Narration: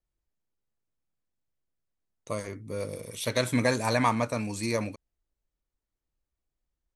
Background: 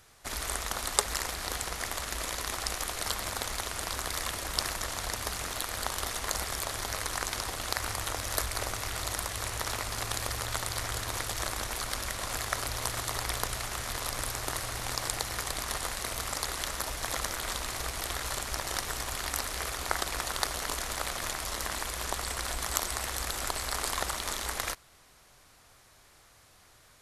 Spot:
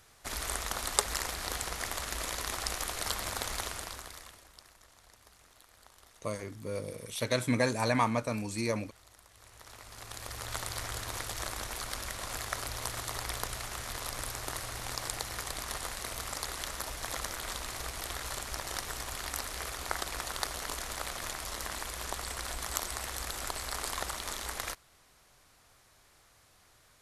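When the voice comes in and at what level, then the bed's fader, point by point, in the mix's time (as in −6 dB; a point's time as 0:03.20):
3.95 s, −3.0 dB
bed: 0:03.66 −1.5 dB
0:04.60 −25 dB
0:09.24 −25 dB
0:10.56 −4 dB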